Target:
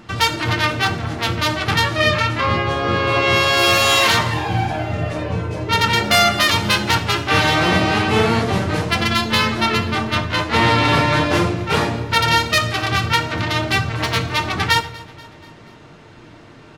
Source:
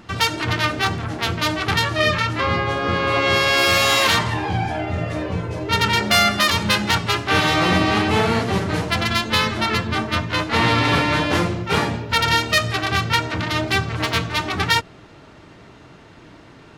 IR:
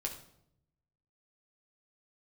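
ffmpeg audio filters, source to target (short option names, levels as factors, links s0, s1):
-filter_complex "[0:a]aecho=1:1:241|482|723|964:0.0841|0.048|0.0273|0.0156,asplit=2[s0][s1];[1:a]atrim=start_sample=2205,asetrate=48510,aresample=44100[s2];[s1][s2]afir=irnorm=-1:irlink=0,volume=1[s3];[s0][s3]amix=inputs=2:normalize=0,volume=0.668"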